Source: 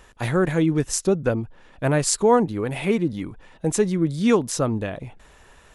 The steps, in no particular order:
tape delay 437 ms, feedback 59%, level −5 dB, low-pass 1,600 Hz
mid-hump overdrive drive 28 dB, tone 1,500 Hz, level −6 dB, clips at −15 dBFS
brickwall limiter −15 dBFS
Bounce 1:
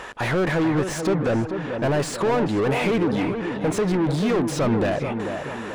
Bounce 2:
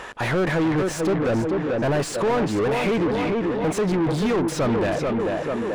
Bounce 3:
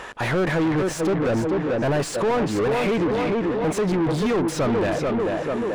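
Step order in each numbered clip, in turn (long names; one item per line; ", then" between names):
brickwall limiter, then mid-hump overdrive, then tape delay
brickwall limiter, then tape delay, then mid-hump overdrive
tape delay, then brickwall limiter, then mid-hump overdrive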